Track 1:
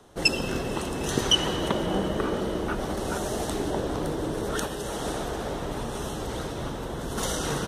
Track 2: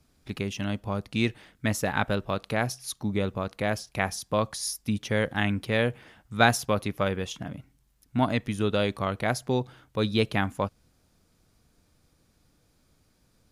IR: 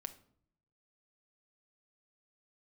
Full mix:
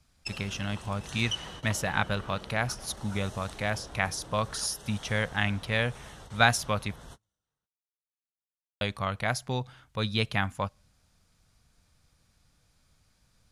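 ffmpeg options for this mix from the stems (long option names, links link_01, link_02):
-filter_complex "[0:a]volume=-11.5dB[link_01];[1:a]volume=0.5dB,asplit=3[link_02][link_03][link_04];[link_02]atrim=end=6.96,asetpts=PTS-STARTPTS,afade=type=out:start_time=6.956:duration=0.004:curve=hsin[link_05];[link_03]atrim=start=6.96:end=8.81,asetpts=PTS-STARTPTS,volume=0[link_06];[link_04]atrim=start=8.81,asetpts=PTS-STARTPTS,afade=type=in:duration=0.004:curve=hsin[link_07];[link_05][link_06][link_07]concat=n=3:v=0:a=1,asplit=3[link_08][link_09][link_10];[link_09]volume=-22dB[link_11];[link_10]apad=whole_len=338268[link_12];[link_01][link_12]sidechaingate=range=-47dB:threshold=-59dB:ratio=16:detection=peak[link_13];[2:a]atrim=start_sample=2205[link_14];[link_11][link_14]afir=irnorm=-1:irlink=0[link_15];[link_13][link_08][link_15]amix=inputs=3:normalize=0,lowpass=11000,equalizer=frequency=340:width=0.92:gain=-11.5"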